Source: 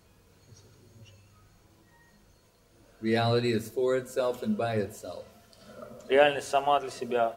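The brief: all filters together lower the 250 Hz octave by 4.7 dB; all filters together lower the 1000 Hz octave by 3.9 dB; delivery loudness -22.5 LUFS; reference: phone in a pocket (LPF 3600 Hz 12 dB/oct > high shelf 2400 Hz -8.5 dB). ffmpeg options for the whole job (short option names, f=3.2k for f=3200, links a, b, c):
-af "lowpass=3.6k,equalizer=f=250:t=o:g=-6,equalizer=f=1k:t=o:g=-4.5,highshelf=f=2.4k:g=-8.5,volume=8.5dB"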